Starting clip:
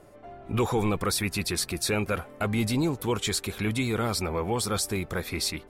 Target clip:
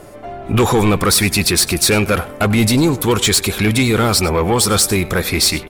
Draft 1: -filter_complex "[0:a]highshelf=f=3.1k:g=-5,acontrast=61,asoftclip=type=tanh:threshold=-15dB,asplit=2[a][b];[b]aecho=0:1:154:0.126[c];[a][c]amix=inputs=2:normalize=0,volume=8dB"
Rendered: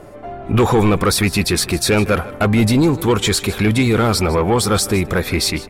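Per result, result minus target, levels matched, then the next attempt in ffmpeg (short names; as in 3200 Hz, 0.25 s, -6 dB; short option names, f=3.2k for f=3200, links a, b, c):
echo 57 ms late; 8000 Hz band -4.5 dB
-filter_complex "[0:a]highshelf=f=3.1k:g=-5,acontrast=61,asoftclip=type=tanh:threshold=-15dB,asplit=2[a][b];[b]aecho=0:1:97:0.126[c];[a][c]amix=inputs=2:normalize=0,volume=8dB"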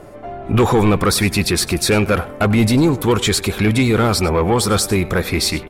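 8000 Hz band -4.5 dB
-filter_complex "[0:a]highshelf=f=3.1k:g=4,acontrast=61,asoftclip=type=tanh:threshold=-15dB,asplit=2[a][b];[b]aecho=0:1:97:0.126[c];[a][c]amix=inputs=2:normalize=0,volume=8dB"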